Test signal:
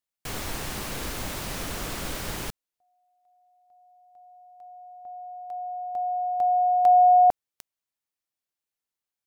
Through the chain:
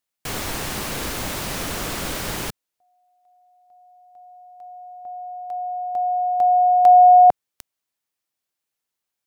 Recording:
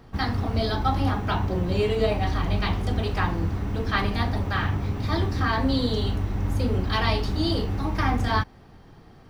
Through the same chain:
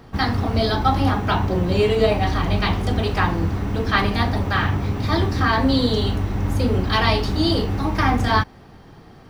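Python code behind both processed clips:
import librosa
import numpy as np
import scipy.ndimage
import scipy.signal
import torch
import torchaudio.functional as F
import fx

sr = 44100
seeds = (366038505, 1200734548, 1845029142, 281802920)

y = fx.low_shelf(x, sr, hz=69.0, db=-6.0)
y = F.gain(torch.from_numpy(y), 6.0).numpy()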